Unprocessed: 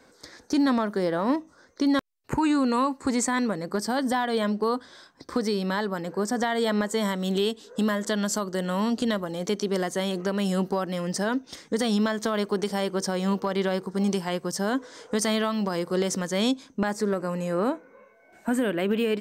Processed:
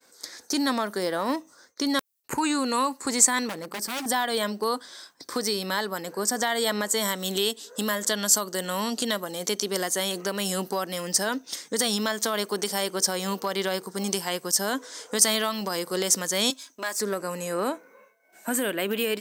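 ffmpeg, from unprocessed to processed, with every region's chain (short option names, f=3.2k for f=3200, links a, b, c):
-filter_complex "[0:a]asettb=1/sr,asplit=3[a][b][c];[a]atrim=end=3.494[d];[b]atrim=start=3.49:end=4.06,asetpts=PTS-STARTPTS,afade=t=in:d=0.004:c=qsin,afade=t=out:st=0.566:d=0.004:c=qsin,equalizer=f=6.4k:w=0.39:g=-8,aeval=exprs='0.0473*(abs(mod(val(0)/0.0473+3,4)-2)-1)':c=same[e];[c]atrim=start=4.056[f];[d][e]acrossfade=d=0.004:c1=hsin:c2=qsin[g];[g][f]acrossfade=d=0.004:c1=qsin:c2=hsin,asettb=1/sr,asplit=3[h][i][j];[h]atrim=end=16.504[k];[i]atrim=start=16.5:end=17,asetpts=PTS-STARTPTS,afade=t=in:d=0.004:c=qsin,afade=t=out:st=0.496:d=0.004:c=qsin,aeval=exprs='if(lt(val(0),0),0.708*val(0),val(0))':c=same,highpass=f=850:p=1,aecho=1:1:3.1:0.45,atrim=end_sample=22050[l];[j]atrim=start=16.996[m];[k][l]acrossfade=d=0.004:c1=hsin:c2=qsin[n];[n][m]acrossfade=d=0.004:c1=qsin:c2=hsin,highpass=f=380:p=1,aemphasis=mode=production:type=75kf,agate=range=-33dB:threshold=-50dB:ratio=3:detection=peak"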